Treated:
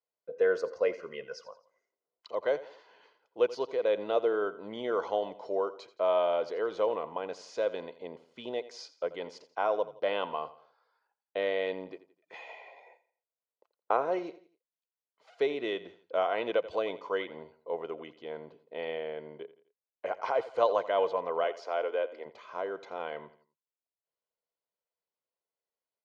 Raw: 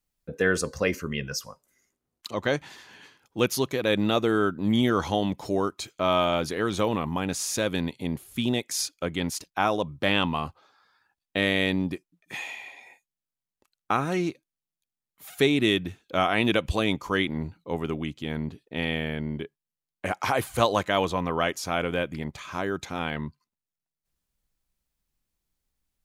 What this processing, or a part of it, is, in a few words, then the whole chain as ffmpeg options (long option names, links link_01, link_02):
phone earpiece: -filter_complex "[0:a]highpass=430,equalizer=frequency=470:width_type=q:width=4:gain=7,equalizer=frequency=680:width_type=q:width=4:gain=8,equalizer=frequency=1700:width_type=q:width=4:gain=-7,equalizer=frequency=2500:width_type=q:width=4:gain=-7,equalizer=frequency=3600:width_type=q:width=4:gain=-9,lowpass=frequency=4200:width=0.5412,lowpass=frequency=4200:width=1.3066,asettb=1/sr,asplit=3[link_01][link_02][link_03];[link_01]atrim=end=12.494[link_04];[link_02]atrim=start=12.49:end=14.19,asetpts=PTS-STARTPTS,afade=type=in:duration=0.004:curve=qsin,afade=type=out:start_time=1.696:duration=0.004:curve=qsin,equalizer=frequency=560:width_type=o:width=2.1:gain=6[link_05];[link_03]atrim=start=14.186[link_06];[link_04][link_05]acrossfade=duration=0.004:curve1=hsin:curve2=qsin[link_07];[link_07][link_06]acrossfade=duration=0.004:curve1=qsin:curve2=hsin,aecho=1:1:2:0.37,asettb=1/sr,asplit=3[link_08][link_09][link_10];[link_08]atrim=end=21.444[link_11];[link_09]atrim=start=21.44:end=22.26,asetpts=PTS-STARTPTS,afade=type=in:duration=0.004:curve=qsin,afade=type=out:start_time=0.816:duration=0.004:curve=qsin,highpass=frequency=290:width=0.5412,highpass=frequency=290:width=1.3066[link_12];[link_10]atrim=start=22.256[link_13];[link_11][link_12]acrossfade=duration=0.004:curve1=hsin:curve2=qsin[link_14];[link_14][link_13]acrossfade=duration=0.004:curve1=qsin:curve2=hsin,aecho=1:1:85|170|255:0.15|0.0598|0.0239,volume=-7dB"